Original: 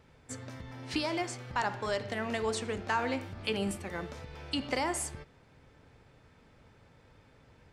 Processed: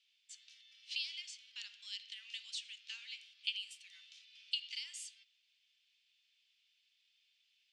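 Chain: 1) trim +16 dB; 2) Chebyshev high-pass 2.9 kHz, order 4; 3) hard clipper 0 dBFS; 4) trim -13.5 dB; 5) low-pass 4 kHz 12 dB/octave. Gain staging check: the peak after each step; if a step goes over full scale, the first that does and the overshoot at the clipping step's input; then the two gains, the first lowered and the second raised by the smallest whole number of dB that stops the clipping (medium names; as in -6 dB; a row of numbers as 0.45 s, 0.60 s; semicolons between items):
-0.5 dBFS, -5.0 dBFS, -5.0 dBFS, -18.5 dBFS, -20.5 dBFS; nothing clips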